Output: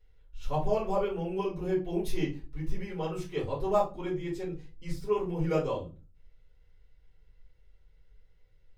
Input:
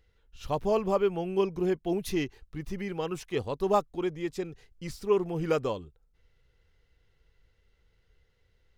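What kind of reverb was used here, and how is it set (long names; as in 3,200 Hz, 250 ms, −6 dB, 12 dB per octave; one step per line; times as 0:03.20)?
rectangular room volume 120 cubic metres, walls furnished, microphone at 4.5 metres
level −13 dB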